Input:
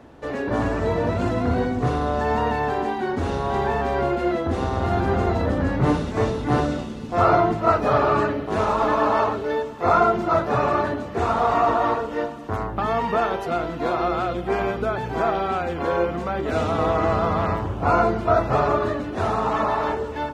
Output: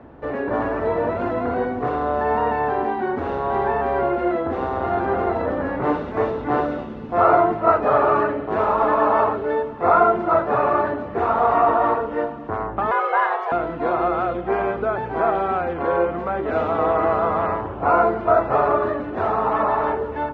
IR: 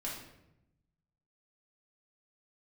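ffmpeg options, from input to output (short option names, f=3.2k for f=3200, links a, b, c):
-filter_complex "[0:a]asettb=1/sr,asplit=3[a][b][c];[a]atrim=end=12.914[d];[b]atrim=start=12.91:end=13.52,asetpts=PTS-STARTPTS,afade=t=in:d=0.004:c=qsin,afade=t=out:st=0.606:d=0.004:c=qsin,afreqshift=310[e];[c]atrim=start=13.516[f];[d][e]acrossfade=d=0.004:c1=hsin:c2=qsin[g];[g][f]acrossfade=d=0.004:c1=qsin:c2=hsin,acrossover=split=300[h][i];[h]acompressor=threshold=-37dB:ratio=6[j];[i]lowpass=1.8k[k];[j][k]amix=inputs=2:normalize=0,volume=3dB"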